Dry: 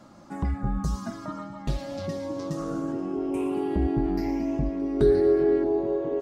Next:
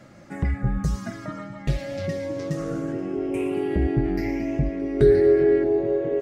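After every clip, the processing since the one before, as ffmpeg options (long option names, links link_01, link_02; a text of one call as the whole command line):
ffmpeg -i in.wav -af "equalizer=frequency=125:width_type=o:width=1:gain=6,equalizer=frequency=250:width_type=o:width=1:gain=-4,equalizer=frequency=500:width_type=o:width=1:gain=5,equalizer=frequency=1000:width_type=o:width=1:gain=-10,equalizer=frequency=2000:width_type=o:width=1:gain=11,equalizer=frequency=4000:width_type=o:width=1:gain=-3,volume=2dB" out.wav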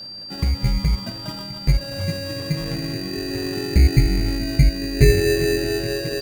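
ffmpeg -i in.wav -af "asubboost=boost=4.5:cutoff=170,acrusher=samples=20:mix=1:aa=0.000001,aeval=exprs='val(0)+0.0224*sin(2*PI*4700*n/s)':channel_layout=same" out.wav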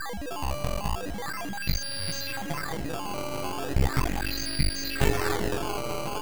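ffmpeg -i in.wav -af "crystalizer=i=6.5:c=0,aresample=11025,aeval=exprs='max(val(0),0)':channel_layout=same,aresample=44100,acrusher=samples=14:mix=1:aa=0.000001:lfo=1:lforange=22.4:lforate=0.38,volume=-7.5dB" out.wav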